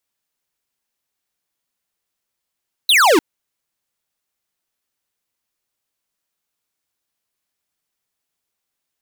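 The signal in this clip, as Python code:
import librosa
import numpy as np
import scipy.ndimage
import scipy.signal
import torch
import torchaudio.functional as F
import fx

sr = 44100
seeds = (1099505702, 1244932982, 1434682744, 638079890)

y = fx.laser_zap(sr, level_db=-11.5, start_hz=4200.0, end_hz=280.0, length_s=0.3, wave='square')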